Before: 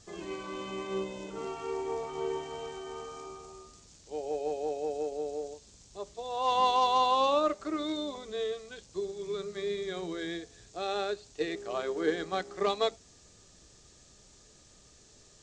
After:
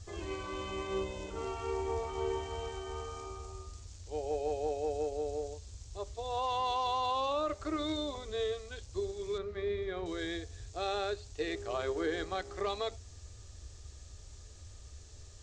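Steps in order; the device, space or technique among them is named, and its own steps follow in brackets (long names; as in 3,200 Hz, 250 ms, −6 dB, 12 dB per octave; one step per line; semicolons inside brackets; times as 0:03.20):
car stereo with a boomy subwoofer (low shelf with overshoot 120 Hz +11.5 dB, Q 3; brickwall limiter −24.5 dBFS, peak gain reduction 8.5 dB)
0:09.38–0:10.06: low-pass filter 2,400 Hz 12 dB per octave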